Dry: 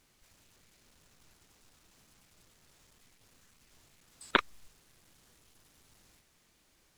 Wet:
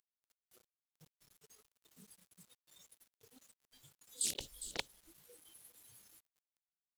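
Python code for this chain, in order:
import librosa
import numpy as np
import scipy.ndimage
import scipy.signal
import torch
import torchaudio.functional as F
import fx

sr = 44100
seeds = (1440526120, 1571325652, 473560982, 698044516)

y = fx.brickwall_bandstop(x, sr, low_hz=600.0, high_hz=2900.0)
y = fx.peak_eq(y, sr, hz=5200.0, db=-9.5, octaves=0.28)
y = fx.noise_reduce_blind(y, sr, reduce_db=27)
y = fx.highpass(y, sr, hz=100.0, slope=6)
y = fx.low_shelf(y, sr, hz=390.0, db=-4.5)
y = y + 10.0 ** (-12.5 / 20.0) * np.pad(y, (int(406 * sr / 1000.0), 0))[:len(y)]
y = fx.over_compress(y, sr, threshold_db=-52.0, ratio=-1.0)
y = fx.quant_dither(y, sr, seeds[0], bits=12, dither='none')
y = fx.doppler_dist(y, sr, depth_ms=0.74)
y = F.gain(torch.from_numpy(y), 10.5).numpy()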